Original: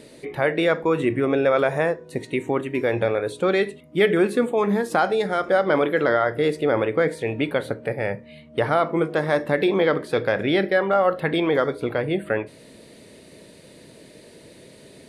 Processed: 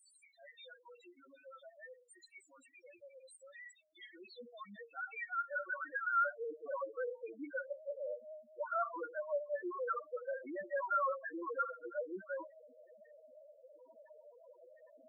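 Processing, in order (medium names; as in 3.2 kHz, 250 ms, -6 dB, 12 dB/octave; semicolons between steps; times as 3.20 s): reverse; compression 10:1, threshold -29 dBFS, peak gain reduction 16 dB; reverse; vibrato 10 Hz 33 cents; comb of notches 420 Hz; band-pass sweep 7.3 kHz -> 1.2 kHz, 3.44–6.27 s; loudest bins only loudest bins 2; trim +11.5 dB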